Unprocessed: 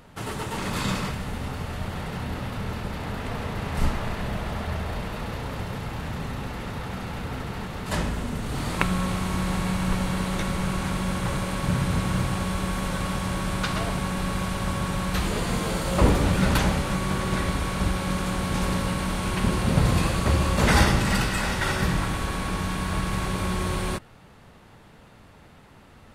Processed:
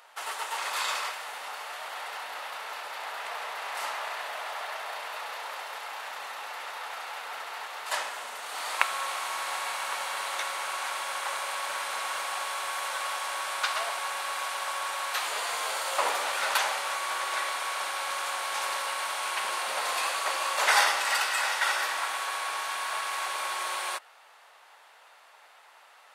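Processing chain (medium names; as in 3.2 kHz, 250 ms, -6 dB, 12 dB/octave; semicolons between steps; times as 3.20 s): high-pass 690 Hz 24 dB/octave; trim +1 dB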